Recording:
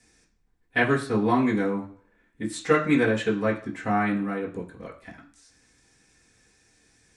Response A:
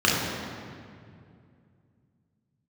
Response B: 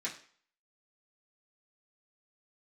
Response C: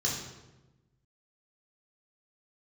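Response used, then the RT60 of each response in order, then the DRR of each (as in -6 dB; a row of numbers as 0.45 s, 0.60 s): B; 2.3 s, 0.50 s, 1.1 s; -5.5 dB, -8.0 dB, -4.0 dB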